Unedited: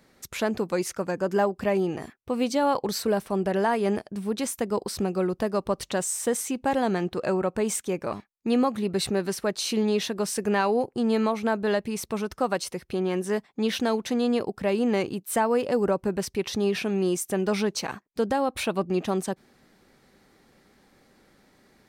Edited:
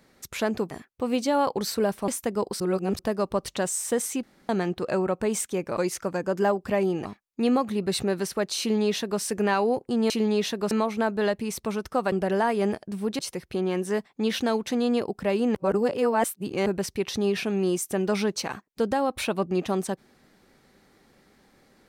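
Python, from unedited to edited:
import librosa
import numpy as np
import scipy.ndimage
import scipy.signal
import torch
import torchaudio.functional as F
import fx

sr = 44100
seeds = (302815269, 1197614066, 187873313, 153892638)

y = fx.edit(x, sr, fx.move(start_s=0.71, length_s=1.28, to_s=8.12),
    fx.move(start_s=3.36, length_s=1.07, to_s=12.58),
    fx.reverse_span(start_s=4.95, length_s=0.39),
    fx.room_tone_fill(start_s=6.58, length_s=0.26),
    fx.duplicate(start_s=9.67, length_s=0.61, to_s=11.17),
    fx.reverse_span(start_s=14.94, length_s=1.11), tone=tone)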